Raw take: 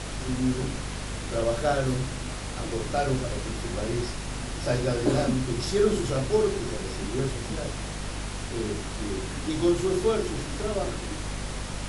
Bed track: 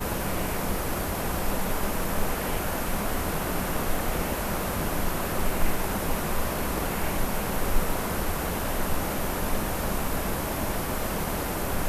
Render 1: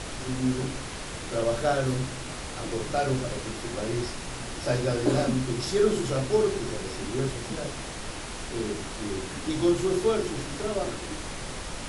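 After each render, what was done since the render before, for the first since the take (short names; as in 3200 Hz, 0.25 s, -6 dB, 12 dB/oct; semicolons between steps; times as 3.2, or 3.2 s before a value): de-hum 50 Hz, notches 5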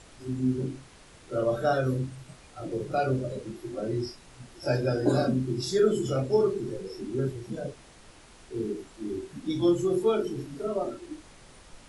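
noise print and reduce 16 dB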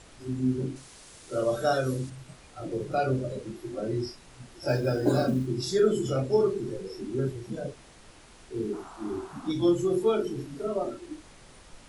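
0.76–2.1 tone controls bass -3 dB, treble +9 dB; 4.68–5.47 short-mantissa float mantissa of 4-bit; 8.73–9.52 band shelf 980 Hz +14 dB 1.3 oct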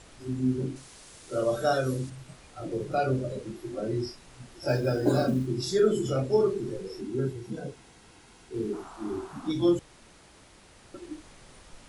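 7.01–8.54 notch comb 600 Hz; 9.79–10.94 room tone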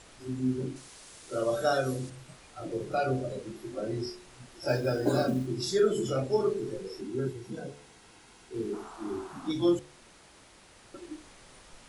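low shelf 250 Hz -5 dB; de-hum 72.19 Hz, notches 11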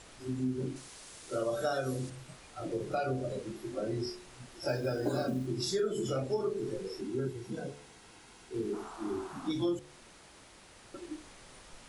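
compressor 3:1, threshold -30 dBFS, peak gain reduction 8 dB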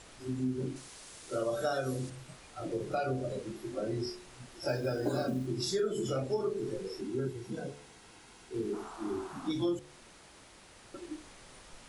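nothing audible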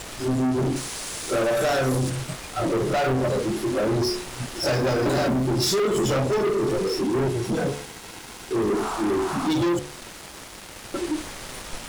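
sample leveller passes 5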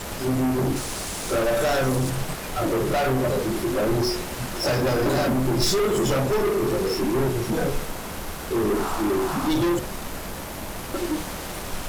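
add bed track -5.5 dB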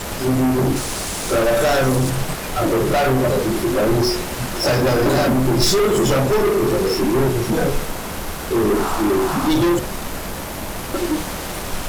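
gain +5.5 dB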